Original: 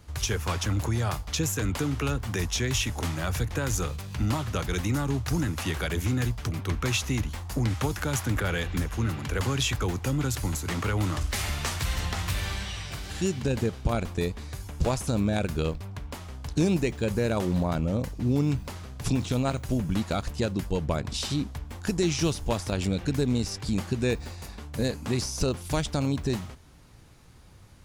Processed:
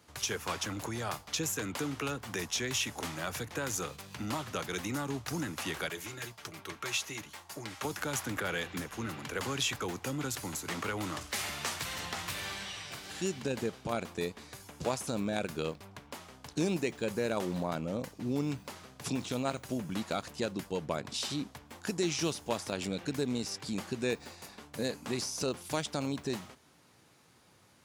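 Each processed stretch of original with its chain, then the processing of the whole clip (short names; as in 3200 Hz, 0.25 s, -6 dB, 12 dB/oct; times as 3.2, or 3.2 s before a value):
5.89–7.85 HPF 46 Hz + low shelf 330 Hz -9.5 dB + notch comb 250 Hz
whole clip: HPF 140 Hz 12 dB/oct; low shelf 190 Hz -8.5 dB; gain -3.5 dB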